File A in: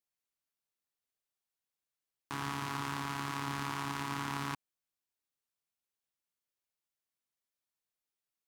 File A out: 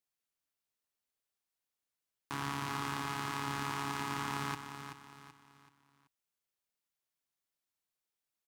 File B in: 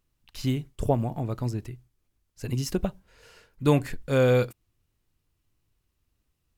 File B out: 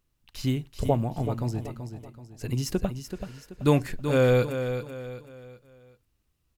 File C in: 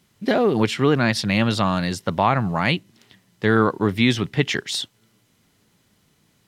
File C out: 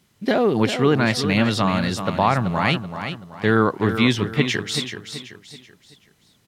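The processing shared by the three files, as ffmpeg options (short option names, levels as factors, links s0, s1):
-af "aecho=1:1:381|762|1143|1524:0.355|0.135|0.0512|0.0195"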